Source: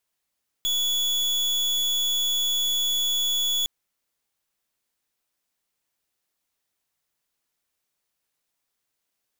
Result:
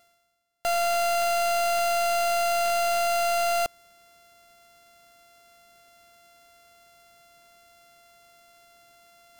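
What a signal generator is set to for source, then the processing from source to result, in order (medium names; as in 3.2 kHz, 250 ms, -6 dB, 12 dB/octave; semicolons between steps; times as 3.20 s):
pulse 3.4 kHz, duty 38% -24 dBFS 3.01 s
sorted samples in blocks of 64 samples; reverse; upward compressor, threshold -37 dBFS; reverse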